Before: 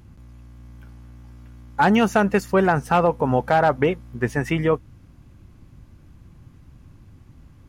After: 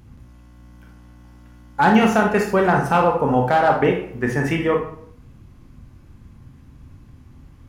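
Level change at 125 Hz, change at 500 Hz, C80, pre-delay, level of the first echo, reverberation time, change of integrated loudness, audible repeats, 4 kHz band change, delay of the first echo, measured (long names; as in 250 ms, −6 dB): +1.0 dB, +1.5 dB, 10.0 dB, 25 ms, no echo audible, 0.65 s, +2.0 dB, no echo audible, +2.0 dB, no echo audible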